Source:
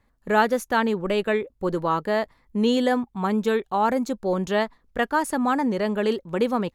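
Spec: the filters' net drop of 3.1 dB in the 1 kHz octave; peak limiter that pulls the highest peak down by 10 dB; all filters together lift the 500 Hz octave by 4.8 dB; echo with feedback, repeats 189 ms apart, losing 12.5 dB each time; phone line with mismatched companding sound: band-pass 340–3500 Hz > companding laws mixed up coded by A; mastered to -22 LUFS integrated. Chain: peaking EQ 500 Hz +8.5 dB; peaking EQ 1 kHz -7 dB; peak limiter -14.5 dBFS; band-pass 340–3500 Hz; feedback delay 189 ms, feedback 24%, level -12.5 dB; companding laws mixed up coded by A; trim +4.5 dB

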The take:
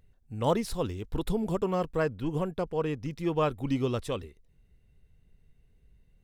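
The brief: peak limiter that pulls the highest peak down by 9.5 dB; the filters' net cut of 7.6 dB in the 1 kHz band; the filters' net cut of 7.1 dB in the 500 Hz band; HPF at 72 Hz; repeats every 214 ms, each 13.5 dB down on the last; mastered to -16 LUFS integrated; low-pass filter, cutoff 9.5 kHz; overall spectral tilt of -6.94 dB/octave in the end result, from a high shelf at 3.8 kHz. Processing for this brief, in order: high-pass 72 Hz; low-pass 9.5 kHz; peaking EQ 500 Hz -7 dB; peaking EQ 1 kHz -7 dB; treble shelf 3.8 kHz -5.5 dB; peak limiter -28 dBFS; feedback delay 214 ms, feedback 21%, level -13.5 dB; trim +22 dB

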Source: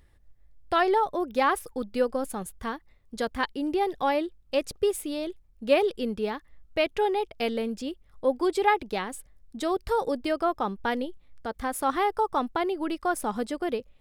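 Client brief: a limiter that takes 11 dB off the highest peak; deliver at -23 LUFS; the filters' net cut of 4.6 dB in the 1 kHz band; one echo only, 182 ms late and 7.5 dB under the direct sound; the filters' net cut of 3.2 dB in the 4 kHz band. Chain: peaking EQ 1 kHz -6 dB; peaking EQ 4 kHz -4 dB; peak limiter -22 dBFS; delay 182 ms -7.5 dB; trim +9.5 dB

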